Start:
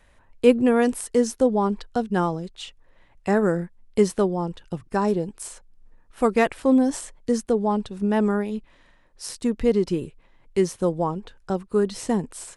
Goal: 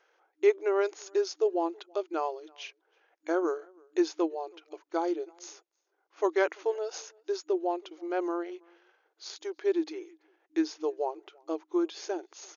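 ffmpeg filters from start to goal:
-filter_complex "[0:a]asplit=2[a][b];[b]adelay=326.5,volume=-28dB,highshelf=f=4k:g=-7.35[c];[a][c]amix=inputs=2:normalize=0,asetrate=37084,aresample=44100,atempo=1.18921,afftfilt=real='re*between(b*sr/4096,310,6800)':imag='im*between(b*sr/4096,310,6800)':win_size=4096:overlap=0.75,volume=-5.5dB"

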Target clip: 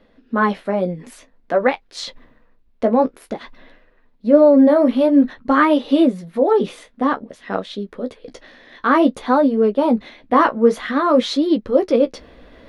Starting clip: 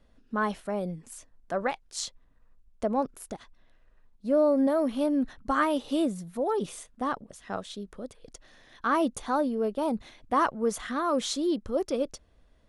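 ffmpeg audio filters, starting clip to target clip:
-af "equalizer=f=250:t=o:w=1:g=11,equalizer=f=500:t=o:w=1:g=10,equalizer=f=1k:t=o:w=1:g=5,equalizer=f=2k:t=o:w=1:g=10,equalizer=f=4k:t=o:w=1:g=8,equalizer=f=8k:t=o:w=1:g=-8,areverse,acompressor=mode=upward:threshold=-32dB:ratio=2.5,areverse,flanger=delay=9.5:depth=8:regen=-29:speed=0.52:shape=triangular,volume=4dB"

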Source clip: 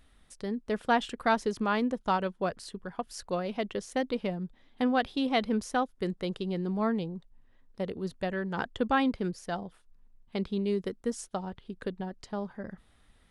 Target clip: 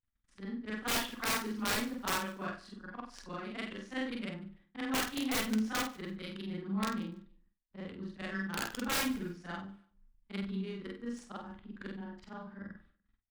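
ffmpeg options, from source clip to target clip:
-filter_complex "[0:a]afftfilt=real='re':imag='-im':win_size=4096:overlap=0.75,agate=range=-57dB:threshold=-60dB:ratio=16:detection=peak,highshelf=f=3.2k:g=4.5,acrossover=split=360|1100[a][b][c];[b]acrusher=bits=2:mix=0:aa=0.5[d];[c]acontrast=48[e];[a][d][e]amix=inputs=3:normalize=0,crystalizer=i=1:c=0,lowshelf=f=300:g=-4.5,adynamicsmooth=sensitivity=2:basefreq=1.2k,aeval=exprs='(mod(26.6*val(0)+1,2)-1)/26.6':c=same,flanger=delay=8.7:depth=2.7:regen=78:speed=0.69:shape=triangular,asplit=2[f][g];[g]adelay=50,volume=-8dB[h];[f][h]amix=inputs=2:normalize=0,asplit=2[i][j];[j]aecho=0:1:146|292:0.0794|0.0222[k];[i][k]amix=inputs=2:normalize=0,volume=7dB"

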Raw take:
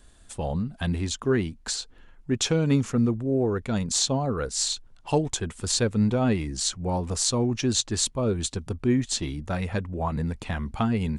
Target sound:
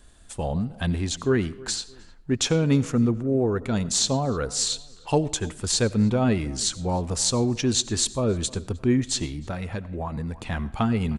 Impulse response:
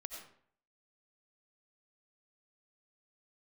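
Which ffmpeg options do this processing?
-filter_complex "[0:a]asplit=2[a][b];[b]adelay=308,lowpass=f=2.6k:p=1,volume=-22dB,asplit=2[c][d];[d]adelay=308,lowpass=f=2.6k:p=1,volume=0.35[e];[c][e]amix=inputs=2:normalize=0[f];[a][f]amix=inputs=2:normalize=0,asplit=3[g][h][i];[g]afade=t=out:st=9.25:d=0.02[j];[h]acompressor=threshold=-29dB:ratio=5,afade=t=in:st=9.25:d=0.02,afade=t=out:st=10.5:d=0.02[k];[i]afade=t=in:st=10.5:d=0.02[l];[j][k][l]amix=inputs=3:normalize=0,asplit=2[m][n];[1:a]atrim=start_sample=2205[o];[n][o]afir=irnorm=-1:irlink=0,volume=-10dB[p];[m][p]amix=inputs=2:normalize=0"

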